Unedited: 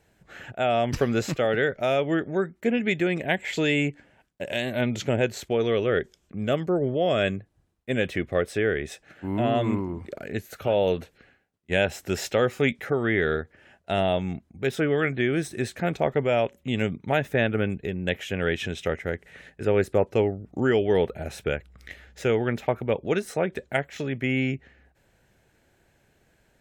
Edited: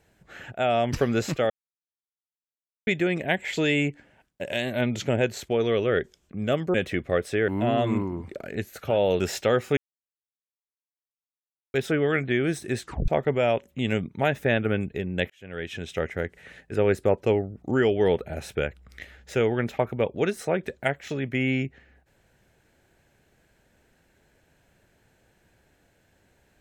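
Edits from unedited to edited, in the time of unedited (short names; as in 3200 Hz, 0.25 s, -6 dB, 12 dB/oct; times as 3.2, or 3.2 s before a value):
1.5–2.87 mute
6.74–7.97 cut
8.71–9.25 cut
10.97–12.09 cut
12.66–14.63 mute
15.71 tape stop 0.26 s
18.19–18.98 fade in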